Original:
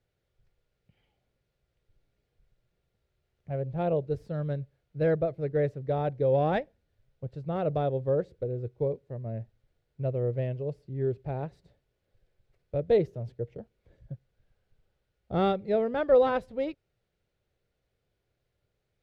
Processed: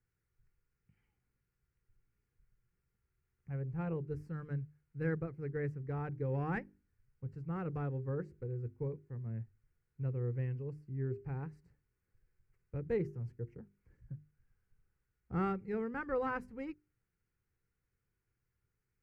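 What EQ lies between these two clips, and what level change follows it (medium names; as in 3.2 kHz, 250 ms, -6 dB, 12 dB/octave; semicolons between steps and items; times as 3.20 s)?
hum notches 50/100/150/200/250/300/350/400 Hz; static phaser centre 1.5 kHz, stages 4; -3.5 dB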